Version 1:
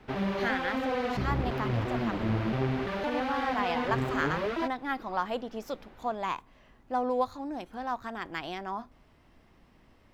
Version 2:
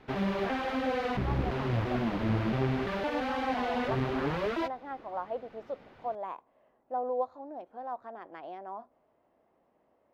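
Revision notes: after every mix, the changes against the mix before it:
speech: add band-pass filter 600 Hz, Q 2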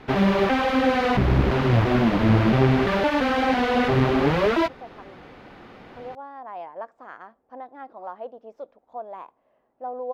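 speech: entry +2.90 s; background +11.0 dB

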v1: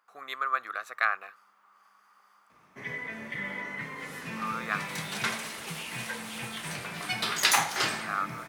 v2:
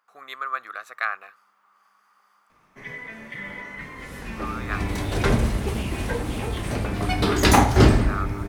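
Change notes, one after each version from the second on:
second sound: remove Bessel high-pass 1.7 kHz, order 2; master: remove high-pass 90 Hz 12 dB/octave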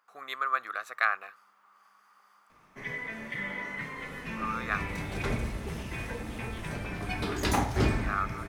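second sound -11.5 dB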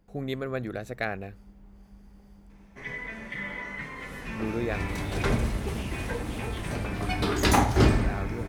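speech: remove resonant high-pass 1.2 kHz, resonance Q 8.8; first sound: add low-pass 11 kHz; second sound +6.0 dB

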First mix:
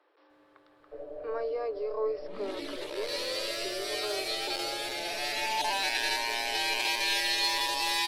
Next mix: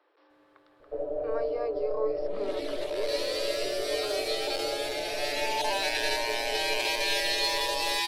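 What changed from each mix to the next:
first sound +9.5 dB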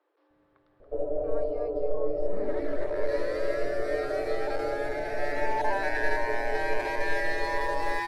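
speech -7.0 dB; second sound: add resonant high shelf 2.3 kHz -9 dB, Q 3; master: add tilt EQ -2 dB/octave

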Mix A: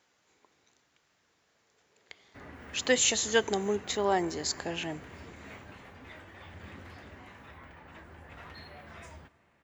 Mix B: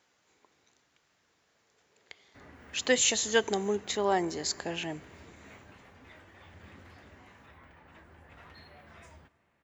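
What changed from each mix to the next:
background -5.0 dB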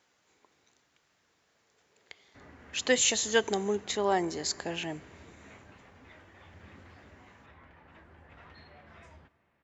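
background: add distance through air 86 m

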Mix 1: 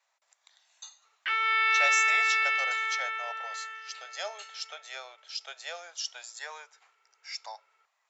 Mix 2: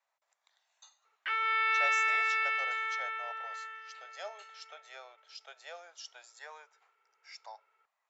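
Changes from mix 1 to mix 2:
speech -4.0 dB; master: add treble shelf 2.2 kHz -10 dB

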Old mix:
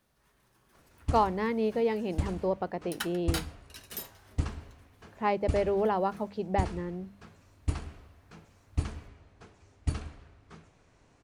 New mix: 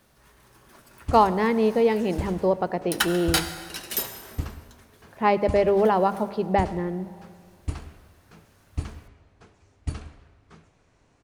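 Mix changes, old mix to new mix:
speech +6.5 dB; second sound +10.0 dB; reverb: on, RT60 2.1 s

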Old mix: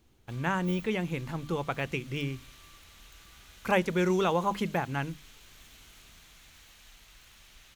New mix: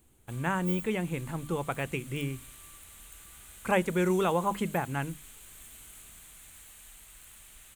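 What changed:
speech: add distance through air 62 m; master: add resonant high shelf 6.8 kHz +8.5 dB, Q 3

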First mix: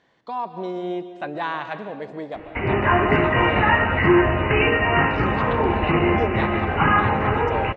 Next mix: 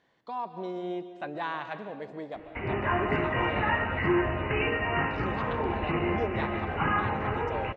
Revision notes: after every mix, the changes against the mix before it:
speech -6.5 dB; background -9.5 dB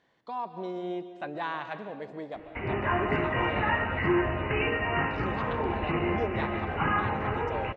no change

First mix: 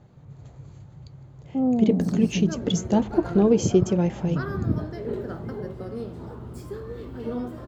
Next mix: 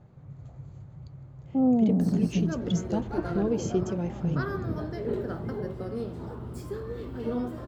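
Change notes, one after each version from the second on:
speech -9.0 dB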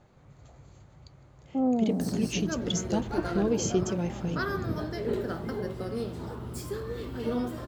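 first sound: add peaking EQ 130 Hz -11.5 dB 1.4 oct; master: add treble shelf 2 kHz +10 dB

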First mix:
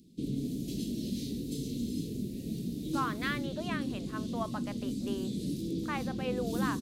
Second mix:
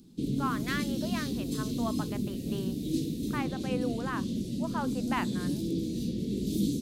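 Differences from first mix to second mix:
speech: entry -2.55 s; background +3.5 dB

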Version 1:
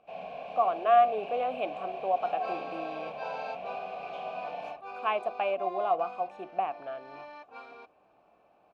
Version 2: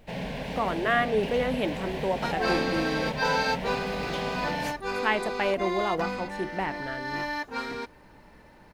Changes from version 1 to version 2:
speech -8.0 dB; first sound: send -11.0 dB; master: remove vowel filter a

